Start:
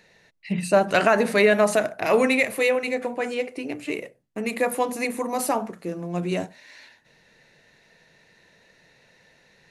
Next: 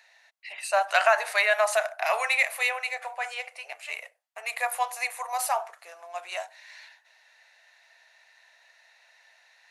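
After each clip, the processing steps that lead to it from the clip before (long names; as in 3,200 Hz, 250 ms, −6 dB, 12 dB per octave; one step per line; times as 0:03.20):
elliptic high-pass filter 680 Hz, stop band 60 dB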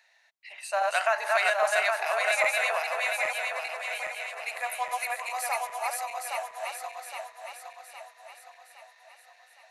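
feedback delay that plays each chunk backwards 407 ms, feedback 68%, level −0.5 dB
level −5 dB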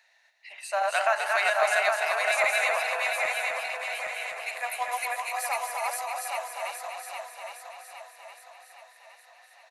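single-tap delay 251 ms −5.5 dB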